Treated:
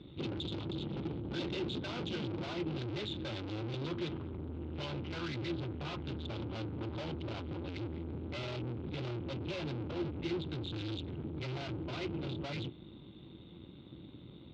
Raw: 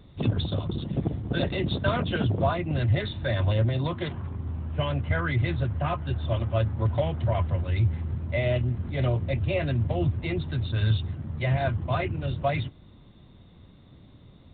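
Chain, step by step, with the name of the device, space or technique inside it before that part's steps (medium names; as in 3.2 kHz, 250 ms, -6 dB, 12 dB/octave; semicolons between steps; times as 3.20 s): guitar amplifier (valve stage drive 41 dB, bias 0.7; tone controls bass 0 dB, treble +12 dB; cabinet simulation 77–3800 Hz, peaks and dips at 93 Hz -6 dB, 330 Hz +9 dB, 670 Hz -7 dB, 1.1 kHz -5 dB, 1.8 kHz -9 dB); trim +4 dB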